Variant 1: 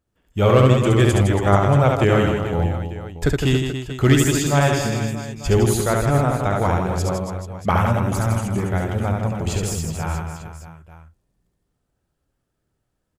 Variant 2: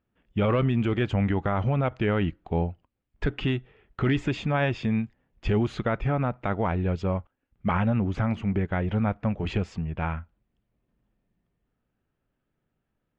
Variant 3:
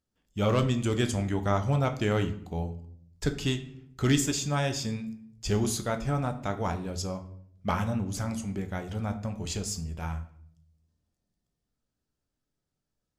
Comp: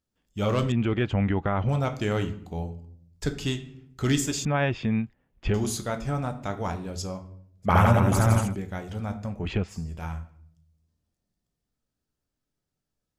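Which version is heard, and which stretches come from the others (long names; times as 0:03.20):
3
0:00.72–0:01.69: punch in from 2
0:04.45–0:05.54: punch in from 2
0:07.70–0:08.49: punch in from 1, crossfade 0.16 s
0:09.38–0:09.79: punch in from 2, crossfade 0.24 s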